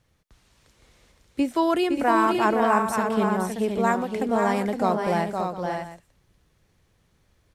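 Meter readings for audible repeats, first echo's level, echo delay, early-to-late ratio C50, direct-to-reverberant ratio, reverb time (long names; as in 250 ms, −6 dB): 3, −5.5 dB, 515 ms, no reverb audible, no reverb audible, no reverb audible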